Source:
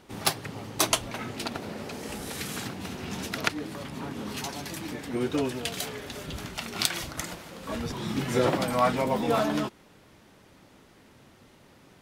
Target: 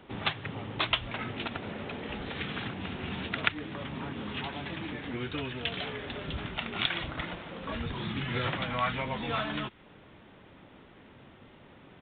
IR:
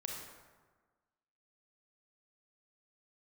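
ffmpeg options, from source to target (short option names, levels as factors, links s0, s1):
-filter_complex "[0:a]acrossover=split=130|1300[s0][s1][s2];[s1]acompressor=threshold=0.0112:ratio=6[s3];[s0][s3][s2]amix=inputs=3:normalize=0,aresample=8000,aresample=44100,volume=1.26"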